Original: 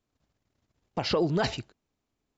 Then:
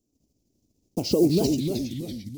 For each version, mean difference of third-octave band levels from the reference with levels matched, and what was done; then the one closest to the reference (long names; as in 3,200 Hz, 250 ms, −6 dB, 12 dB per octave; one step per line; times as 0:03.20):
12.5 dB: one scale factor per block 5 bits
drawn EQ curve 140 Hz 0 dB, 290 Hz +9 dB, 660 Hz −5 dB, 1,700 Hz −29 dB, 2,500 Hz −11 dB, 3,800 Hz −8 dB, 5,700 Hz +6 dB
delay with pitch and tempo change per echo 135 ms, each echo −2 semitones, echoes 3, each echo −6 dB
level +2 dB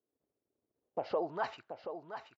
8.0 dB: parametric band 170 Hz −2 dB
band-pass filter sweep 410 Hz → 2,300 Hz, 0:00.78–0:02.00
on a send: single-tap delay 729 ms −9 dB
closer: second